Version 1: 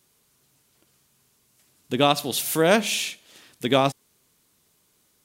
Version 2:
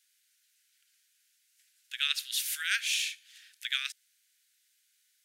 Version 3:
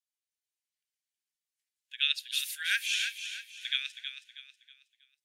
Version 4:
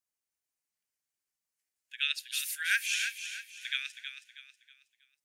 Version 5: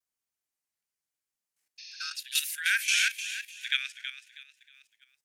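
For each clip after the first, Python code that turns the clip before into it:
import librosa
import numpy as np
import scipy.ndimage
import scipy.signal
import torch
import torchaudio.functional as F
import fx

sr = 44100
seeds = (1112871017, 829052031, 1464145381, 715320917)

y1 = scipy.signal.sosfilt(scipy.signal.butter(12, 1500.0, 'highpass', fs=sr, output='sos'), x)
y1 = fx.high_shelf(y1, sr, hz=9500.0, db=-6.0)
y1 = y1 * librosa.db_to_amplitude(-3.0)
y2 = scipy.signal.sosfilt(scipy.signal.butter(4, 1300.0, 'highpass', fs=sr, output='sos'), y1)
y2 = fx.echo_feedback(y2, sr, ms=320, feedback_pct=51, wet_db=-6.0)
y2 = fx.spectral_expand(y2, sr, expansion=1.5)
y3 = fx.peak_eq(y2, sr, hz=3500.0, db=-8.0, octaves=0.71)
y3 = y3 * librosa.db_to_amplitude(3.0)
y4 = fx.spec_repair(y3, sr, seeds[0], start_s=1.82, length_s=0.29, low_hz=1700.0, high_hz=6700.0, source='after')
y4 = fx.vibrato(y4, sr, rate_hz=0.94, depth_cents=45.0)
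y4 = fx.level_steps(y4, sr, step_db=11)
y4 = y4 * librosa.db_to_amplitude(8.5)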